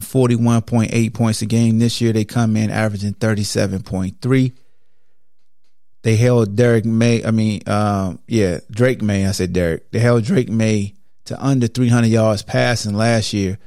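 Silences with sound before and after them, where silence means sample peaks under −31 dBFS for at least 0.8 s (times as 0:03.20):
0:04.50–0:06.04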